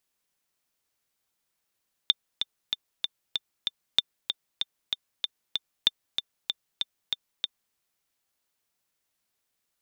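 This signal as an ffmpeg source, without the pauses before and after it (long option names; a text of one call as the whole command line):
ffmpeg -f lavfi -i "aevalsrc='pow(10,(-6-7.5*gte(mod(t,6*60/191),60/191))/20)*sin(2*PI*3580*mod(t,60/191))*exp(-6.91*mod(t,60/191)/0.03)':duration=5.65:sample_rate=44100" out.wav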